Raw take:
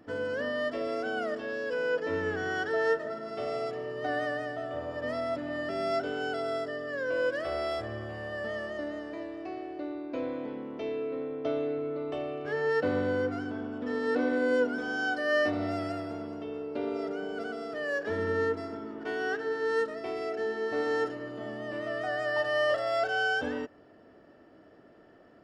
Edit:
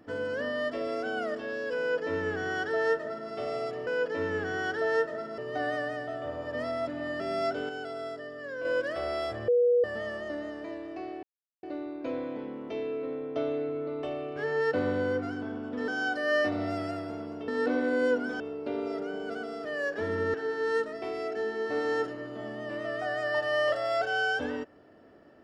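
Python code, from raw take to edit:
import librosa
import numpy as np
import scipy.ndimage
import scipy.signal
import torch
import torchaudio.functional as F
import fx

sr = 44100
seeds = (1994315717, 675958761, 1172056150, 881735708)

y = fx.edit(x, sr, fx.duplicate(start_s=1.79, length_s=1.51, to_s=3.87),
    fx.clip_gain(start_s=6.18, length_s=0.96, db=-5.0),
    fx.bleep(start_s=7.97, length_s=0.36, hz=485.0, db=-19.5),
    fx.insert_silence(at_s=9.72, length_s=0.4),
    fx.move(start_s=13.97, length_s=0.92, to_s=16.49),
    fx.cut(start_s=18.43, length_s=0.93), tone=tone)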